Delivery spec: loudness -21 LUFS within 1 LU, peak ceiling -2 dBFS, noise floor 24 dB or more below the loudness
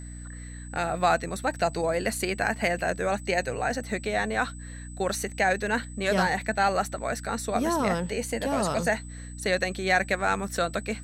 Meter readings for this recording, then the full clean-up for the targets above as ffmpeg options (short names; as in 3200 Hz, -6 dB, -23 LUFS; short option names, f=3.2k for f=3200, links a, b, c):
hum 60 Hz; harmonics up to 300 Hz; hum level -38 dBFS; steady tone 8000 Hz; tone level -47 dBFS; loudness -27.0 LUFS; peak -9.5 dBFS; loudness target -21.0 LUFS
-> -af "bandreject=f=60:t=h:w=6,bandreject=f=120:t=h:w=6,bandreject=f=180:t=h:w=6,bandreject=f=240:t=h:w=6,bandreject=f=300:t=h:w=6"
-af "bandreject=f=8k:w=30"
-af "volume=6dB"